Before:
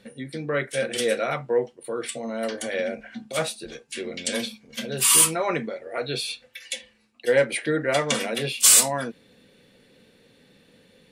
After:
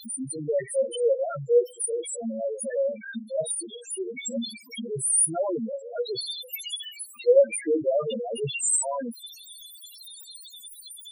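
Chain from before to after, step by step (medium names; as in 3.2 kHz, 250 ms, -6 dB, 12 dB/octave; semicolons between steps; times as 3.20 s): zero-crossing glitches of -16.5 dBFS; loudest bins only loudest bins 2; trim +4 dB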